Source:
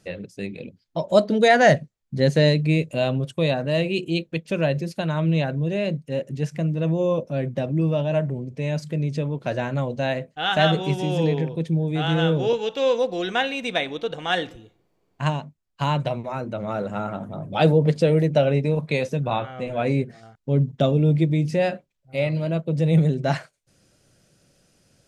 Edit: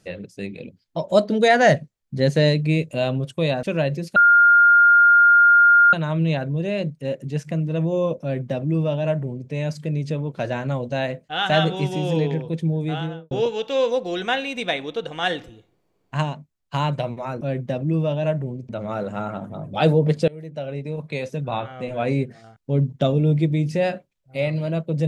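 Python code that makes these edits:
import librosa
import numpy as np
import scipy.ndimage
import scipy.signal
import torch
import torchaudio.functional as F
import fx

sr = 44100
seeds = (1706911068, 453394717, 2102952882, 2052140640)

y = fx.studio_fade_out(x, sr, start_s=11.88, length_s=0.5)
y = fx.edit(y, sr, fx.cut(start_s=3.63, length_s=0.84),
    fx.insert_tone(at_s=5.0, length_s=1.77, hz=1410.0, db=-9.5),
    fx.duplicate(start_s=7.29, length_s=1.28, to_s=16.48),
    fx.fade_in_from(start_s=18.07, length_s=1.59, floor_db=-24.0), tone=tone)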